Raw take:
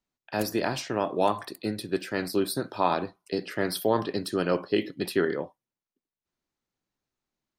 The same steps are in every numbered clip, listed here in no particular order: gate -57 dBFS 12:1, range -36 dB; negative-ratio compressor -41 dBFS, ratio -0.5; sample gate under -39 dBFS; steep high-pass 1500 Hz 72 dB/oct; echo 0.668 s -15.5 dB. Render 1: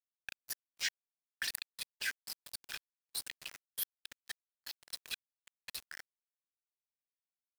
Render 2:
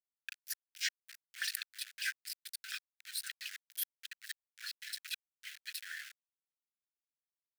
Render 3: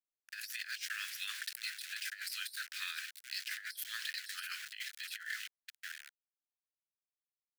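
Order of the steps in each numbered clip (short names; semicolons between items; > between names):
echo > negative-ratio compressor > steep high-pass > sample gate > gate; echo > negative-ratio compressor > gate > sample gate > steep high-pass; echo > sample gate > steep high-pass > gate > negative-ratio compressor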